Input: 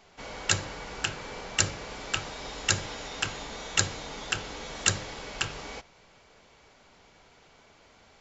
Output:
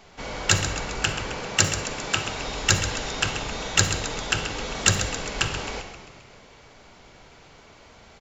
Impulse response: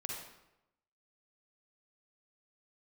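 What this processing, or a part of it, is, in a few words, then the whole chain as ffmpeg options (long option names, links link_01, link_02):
saturated reverb return: -filter_complex "[0:a]lowshelf=frequency=220:gain=4,asettb=1/sr,asplit=3[link_01][link_02][link_03];[link_01]atrim=end=1.344[link_04];[link_02]atrim=start=1.34:end=2.28,asetpts=PTS-STARTPTS,afade=type=in:duration=0.004:curve=qsin,afade=type=out:start_time=0.936:duration=0.004:curve=qsin,highpass=90[link_05];[link_03]atrim=start=2.276[link_06];[link_04][link_05]acrossfade=duration=0.004:curve1=hsin:curve2=qsin[link_07];[link_07][link_06]acrossfade=duration=0.004:curve1=qsin:curve2=hsin,asplit=8[link_08][link_09][link_10][link_11][link_12][link_13][link_14][link_15];[link_09]adelay=132,afreqshift=-40,volume=-11dB[link_16];[link_10]adelay=264,afreqshift=-80,volume=-15.7dB[link_17];[link_11]adelay=396,afreqshift=-120,volume=-20.5dB[link_18];[link_12]adelay=528,afreqshift=-160,volume=-25.2dB[link_19];[link_13]adelay=660,afreqshift=-200,volume=-29.9dB[link_20];[link_14]adelay=792,afreqshift=-240,volume=-34.7dB[link_21];[link_15]adelay=924,afreqshift=-280,volume=-39.4dB[link_22];[link_08][link_16][link_17][link_18][link_19][link_20][link_21][link_22]amix=inputs=8:normalize=0,asplit=2[link_23][link_24];[1:a]atrim=start_sample=2205[link_25];[link_24][link_25]afir=irnorm=-1:irlink=0,asoftclip=type=tanh:threshold=-22.5dB,volume=-4dB[link_26];[link_23][link_26]amix=inputs=2:normalize=0,volume=3dB"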